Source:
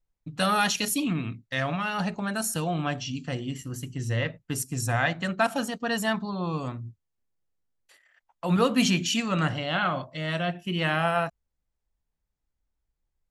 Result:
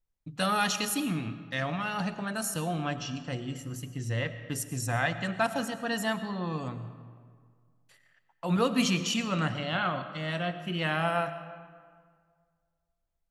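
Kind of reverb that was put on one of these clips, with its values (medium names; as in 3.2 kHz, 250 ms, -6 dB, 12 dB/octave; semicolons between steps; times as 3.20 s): algorithmic reverb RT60 1.9 s, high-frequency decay 0.6×, pre-delay 65 ms, DRR 11.5 dB; trim -3.5 dB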